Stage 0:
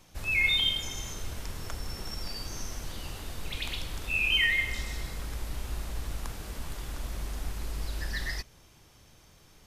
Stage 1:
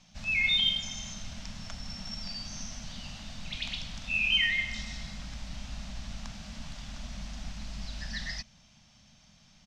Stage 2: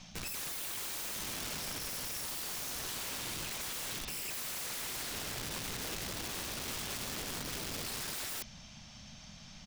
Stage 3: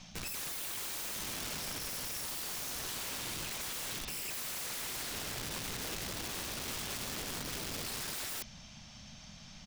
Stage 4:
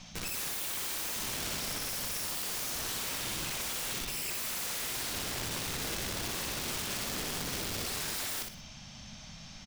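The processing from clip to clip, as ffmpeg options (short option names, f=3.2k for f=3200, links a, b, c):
-af "firequalizer=gain_entry='entry(100,0);entry(210,12);entry(380,-20);entry(620,3);entry(1000,-1);entry(2800,6);entry(5900,7);entry(11000,-20)':delay=0.05:min_phase=1,volume=-5.5dB"
-af "areverse,acompressor=threshold=-38dB:ratio=6,areverse,aeval=exprs='(mod(141*val(0)+1,2)-1)/141':c=same,volume=8dB"
-af anull
-af "aecho=1:1:61|122|183|244:0.562|0.157|0.0441|0.0123,volume=2.5dB"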